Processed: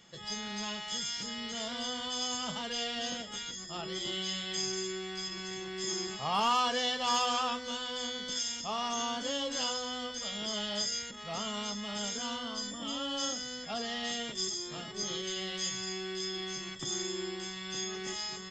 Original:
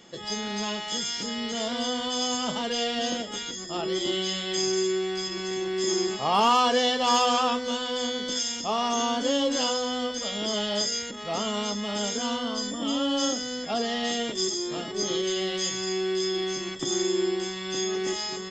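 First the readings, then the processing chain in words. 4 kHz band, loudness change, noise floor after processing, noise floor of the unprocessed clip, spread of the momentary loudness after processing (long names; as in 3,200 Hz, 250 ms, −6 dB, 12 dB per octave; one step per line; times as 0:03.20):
−5.5 dB, −7.5 dB, −44 dBFS, −36 dBFS, 7 LU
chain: drawn EQ curve 160 Hz 0 dB, 300 Hz −11 dB, 1,400 Hz −2 dB
level −3.5 dB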